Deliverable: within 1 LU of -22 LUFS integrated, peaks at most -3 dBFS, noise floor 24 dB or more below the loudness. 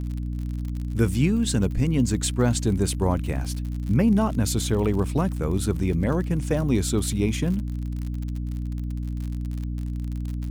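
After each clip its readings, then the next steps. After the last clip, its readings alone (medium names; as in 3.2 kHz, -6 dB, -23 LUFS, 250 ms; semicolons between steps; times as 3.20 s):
tick rate 56 per s; hum 60 Hz; highest harmonic 300 Hz; hum level -26 dBFS; loudness -25.0 LUFS; peak level -8.0 dBFS; loudness target -22.0 LUFS
-> de-click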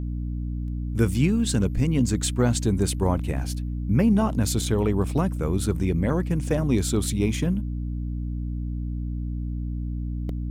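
tick rate 0.48 per s; hum 60 Hz; highest harmonic 300 Hz; hum level -26 dBFS
-> de-hum 60 Hz, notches 5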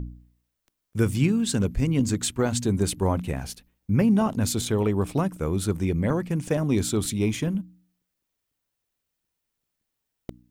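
hum not found; loudness -25.0 LUFS; peak level -9.0 dBFS; loudness target -22.0 LUFS
-> trim +3 dB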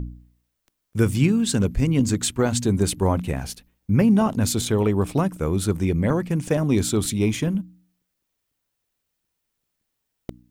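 loudness -22.0 LUFS; peak level -6.0 dBFS; noise floor -78 dBFS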